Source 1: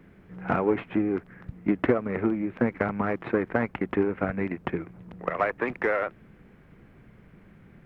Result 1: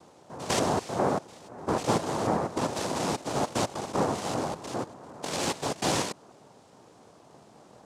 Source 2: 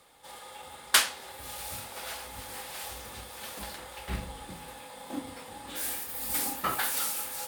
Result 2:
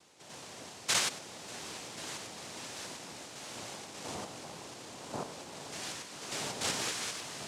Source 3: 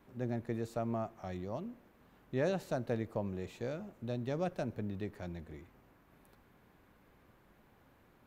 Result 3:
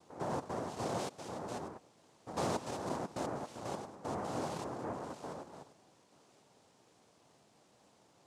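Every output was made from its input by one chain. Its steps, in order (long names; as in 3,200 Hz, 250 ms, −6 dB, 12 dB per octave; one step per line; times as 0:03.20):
spectrum averaged block by block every 100 ms
cochlear-implant simulation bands 2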